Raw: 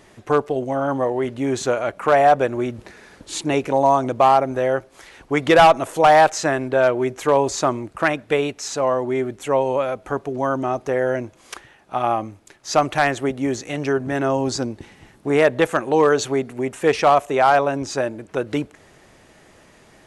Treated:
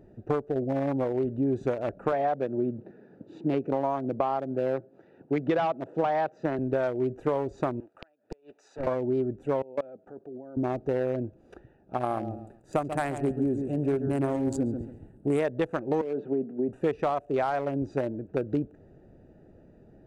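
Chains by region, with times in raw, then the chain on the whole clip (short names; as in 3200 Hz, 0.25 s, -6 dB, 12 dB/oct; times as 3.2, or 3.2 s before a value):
2.12–6.59 HPF 130 Hz 24 dB/oct + air absorption 140 m
7.8–8.87 HPF 790 Hz + flipped gate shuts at -15 dBFS, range -32 dB + Doppler distortion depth 0.69 ms
9.62–10.57 HPF 230 Hz + level quantiser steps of 19 dB
11.97–15.4 resonant high shelf 6900 Hz +8 dB, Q 3 + lo-fi delay 0.137 s, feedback 35%, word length 7-bit, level -8.5 dB
16.01–16.69 steep high-pass 160 Hz + compressor 5:1, threshold -17 dBFS + air absorption 460 m
whole clip: Wiener smoothing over 41 samples; compressor 6:1, threshold -23 dBFS; tilt shelf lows +3.5 dB; gain -2.5 dB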